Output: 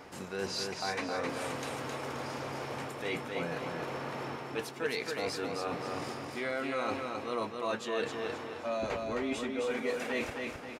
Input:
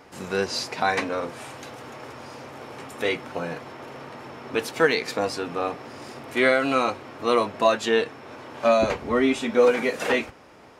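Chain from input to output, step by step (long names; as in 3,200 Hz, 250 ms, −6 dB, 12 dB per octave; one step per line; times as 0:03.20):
reversed playback
downward compressor 5 to 1, threshold −34 dBFS, peak gain reduction 18.5 dB
reversed playback
repeating echo 264 ms, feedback 40%, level −4 dB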